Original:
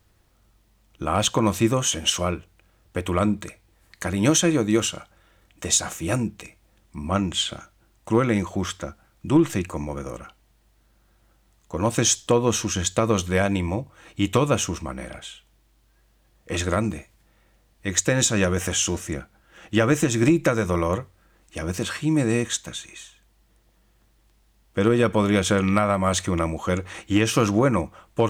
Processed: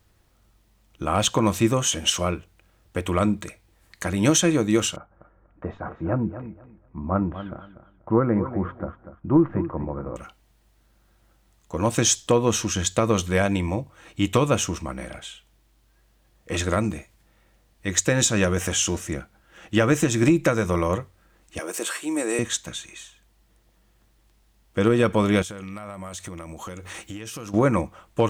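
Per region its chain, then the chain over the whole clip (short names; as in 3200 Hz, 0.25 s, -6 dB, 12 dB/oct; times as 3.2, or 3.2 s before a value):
4.96–10.16 LPF 1400 Hz 24 dB/oct + feedback echo 0.242 s, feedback 21%, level -12 dB
21.59–22.39 HPF 330 Hz 24 dB/oct + resonant high shelf 6800 Hz +6.5 dB, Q 1.5
25.42–27.54 high shelf 6800 Hz +10 dB + compressor 12:1, threshold -32 dBFS
whole clip: dry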